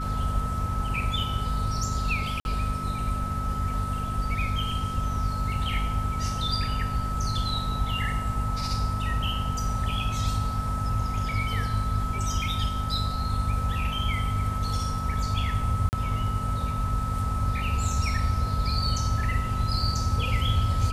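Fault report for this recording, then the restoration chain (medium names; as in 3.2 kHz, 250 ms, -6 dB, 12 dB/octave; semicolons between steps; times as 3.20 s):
hum 50 Hz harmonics 5 -31 dBFS
whine 1.3 kHz -32 dBFS
2.40–2.45 s: dropout 51 ms
15.89–15.93 s: dropout 39 ms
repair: band-stop 1.3 kHz, Q 30; de-hum 50 Hz, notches 5; interpolate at 2.40 s, 51 ms; interpolate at 15.89 s, 39 ms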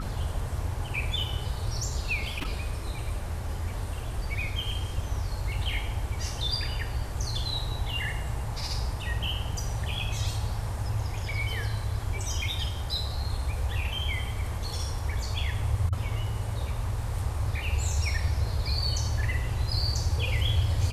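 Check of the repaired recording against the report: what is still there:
nothing left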